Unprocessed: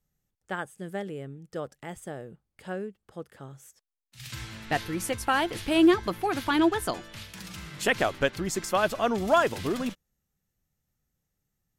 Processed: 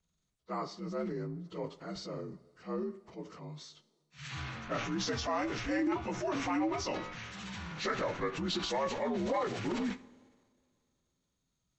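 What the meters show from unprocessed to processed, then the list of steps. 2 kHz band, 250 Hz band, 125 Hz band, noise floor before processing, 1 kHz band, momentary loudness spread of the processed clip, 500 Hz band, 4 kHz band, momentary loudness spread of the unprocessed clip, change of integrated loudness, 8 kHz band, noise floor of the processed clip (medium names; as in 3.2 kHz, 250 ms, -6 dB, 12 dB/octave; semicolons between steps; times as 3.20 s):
-9.5 dB, -7.5 dB, -3.5 dB, -83 dBFS, -8.0 dB, 14 LU, -7.5 dB, -5.5 dB, 19 LU, -8.5 dB, -8.0 dB, -82 dBFS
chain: frequency axis rescaled in octaves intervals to 83%; compression 6:1, threshold -29 dBFS, peak gain reduction 12.5 dB; two-slope reverb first 0.5 s, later 3 s, from -21 dB, DRR 15 dB; transient shaper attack -4 dB, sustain +6 dB; band-stop 5 kHz, Q 21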